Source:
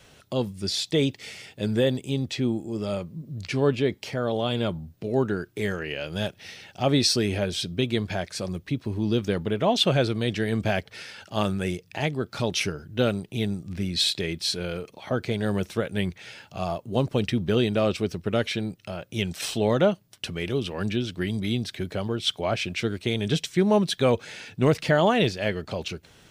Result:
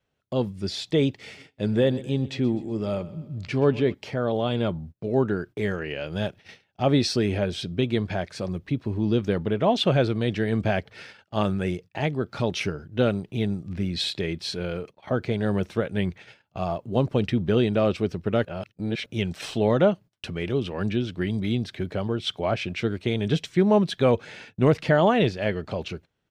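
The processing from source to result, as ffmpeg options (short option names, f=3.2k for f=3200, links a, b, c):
-filter_complex "[0:a]asplit=3[a][b][c];[a]afade=t=out:st=1.36:d=0.02[d];[b]aecho=1:1:126|252|378|504:0.119|0.0606|0.0309|0.0158,afade=t=in:st=1.36:d=0.02,afade=t=out:st=3.93:d=0.02[e];[c]afade=t=in:st=3.93:d=0.02[f];[d][e][f]amix=inputs=3:normalize=0,asplit=3[g][h][i];[g]atrim=end=18.452[j];[h]atrim=start=18.448:end=19.062,asetpts=PTS-STARTPTS,areverse[k];[i]atrim=start=19.058[l];[j][k]acrossfade=d=0.004:c1=hsin:c2=hsin[m];[m][l]acrossfade=d=0.004:c1=hsin:c2=hsin,agate=range=-24dB:threshold=-41dB:ratio=16:detection=peak,lowpass=f=2.2k:p=1,volume=1.5dB"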